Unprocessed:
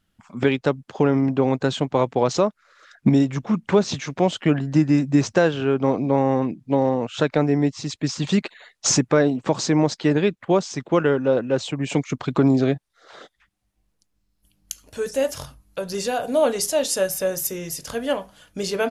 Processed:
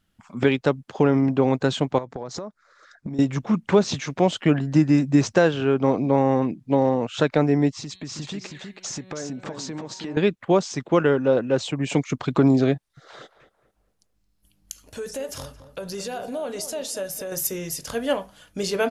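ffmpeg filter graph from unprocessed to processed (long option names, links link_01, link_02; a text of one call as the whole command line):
ffmpeg -i in.wav -filter_complex "[0:a]asettb=1/sr,asplit=3[link_01][link_02][link_03];[link_01]atrim=end=1.984[link_04];[link_02]atrim=start=1.98:end=3.19,asetpts=PTS-STARTPTS,afade=type=in:duration=0.004:curve=qsin,afade=type=out:start_time=1.206:duration=0.004:curve=qsin,equalizer=frequency=2800:width_type=o:width=0.66:gain=-11,acompressor=threshold=-28dB:ratio=12:attack=3.2:release=140:knee=1:detection=peak,lowpass=7700[link_05];[link_03]atrim=start=3.186[link_06];[link_04][link_05]acrossfade=duration=0.004:curve1=hsin:curve2=qsin[link_07];[link_07][link_06]acrossfade=duration=0.004:curve1=qsin:curve2=hsin,asettb=1/sr,asplit=3[link_08][link_09][link_10];[link_08]atrim=end=7.724[link_11];[link_09]atrim=start=7.72:end=10.17,asetpts=PTS-STARTPTS,afade=type=in:duration=0.004:curve=qsin,afade=type=out:start_time=2.446:duration=0.004:curve=qsin,bandreject=frequency=187.1:width_type=h:width=4,bandreject=frequency=374.2:width_type=h:width=4,bandreject=frequency=561.3:width_type=h:width=4,bandreject=frequency=748.4:width_type=h:width=4,bandreject=frequency=935.5:width_type=h:width=4,bandreject=frequency=1122.6:width_type=h:width=4,bandreject=frequency=1309.7:width_type=h:width=4,bandreject=frequency=1496.8:width_type=h:width=4,bandreject=frequency=1683.9:width_type=h:width=4,bandreject=frequency=1871:width_type=h:width=4,bandreject=frequency=2058.1:width_type=h:width=4,bandreject=frequency=2245.2:width_type=h:width=4,bandreject=frequency=2432.3:width_type=h:width=4,bandreject=frequency=2619.4:width_type=h:width=4,bandreject=frequency=2806.5:width_type=h:width=4,bandreject=frequency=2993.6:width_type=h:width=4,bandreject=frequency=3180.7:width_type=h:width=4,bandreject=frequency=3367.8:width_type=h:width=4,bandreject=frequency=3554.9:width_type=h:width=4,bandreject=frequency=3742:width_type=h:width=4,bandreject=frequency=3929.1:width_type=h:width=4,bandreject=frequency=4116.2:width_type=h:width=4,bandreject=frequency=4303.3:width_type=h:width=4,acompressor=threshold=-31dB:ratio=5:attack=3.2:release=140:knee=1:detection=peak,aecho=1:1:322:0.501,atrim=end_sample=108045[link_12];[link_10]atrim=start=10.166[link_13];[link_11][link_12]acrossfade=duration=0.004:curve1=hsin:curve2=qsin[link_14];[link_14][link_13]acrossfade=duration=0.004:curve1=qsin:curve2=hsin,asettb=1/sr,asplit=3[link_15][link_16][link_17];[link_15]atrim=end=12.754[link_18];[link_16]atrim=start=12.75:end=17.32,asetpts=PTS-STARTPTS,afade=type=in:duration=0.004:curve=qsin,afade=type=out:start_time=4.566:duration=0.004:curve=qsin,acompressor=threshold=-30dB:ratio=3:attack=3.2:release=140:knee=1:detection=peak,asplit=2[link_19][link_20];[link_20]adelay=221,lowpass=frequency=1400:poles=1,volume=-11.5dB,asplit=2[link_21][link_22];[link_22]adelay=221,lowpass=frequency=1400:poles=1,volume=0.39,asplit=2[link_23][link_24];[link_24]adelay=221,lowpass=frequency=1400:poles=1,volume=0.39,asplit=2[link_25][link_26];[link_26]adelay=221,lowpass=frequency=1400:poles=1,volume=0.39[link_27];[link_19][link_21][link_23][link_25][link_27]amix=inputs=5:normalize=0,atrim=end_sample=201537[link_28];[link_17]atrim=start=17.316[link_29];[link_18][link_28]acrossfade=duration=0.004:curve1=hsin:curve2=qsin[link_30];[link_30][link_29]acrossfade=duration=0.004:curve1=qsin:curve2=hsin" out.wav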